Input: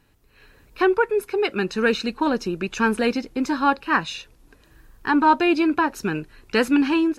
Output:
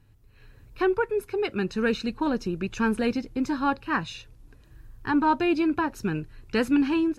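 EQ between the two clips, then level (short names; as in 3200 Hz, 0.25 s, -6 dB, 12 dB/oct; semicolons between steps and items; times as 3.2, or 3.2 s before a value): bell 110 Hz +11.5 dB 0.29 oct; low shelf 200 Hz +11 dB; -7.0 dB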